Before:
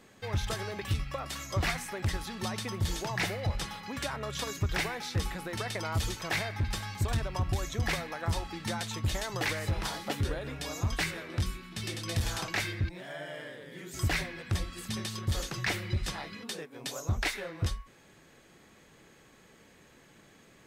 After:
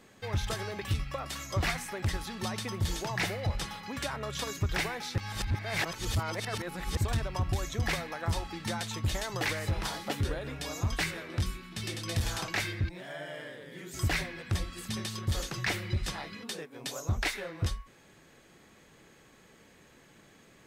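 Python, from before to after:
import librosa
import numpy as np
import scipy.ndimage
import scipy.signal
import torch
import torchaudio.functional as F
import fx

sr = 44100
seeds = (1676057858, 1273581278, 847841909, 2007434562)

y = fx.edit(x, sr, fx.reverse_span(start_s=5.18, length_s=1.79), tone=tone)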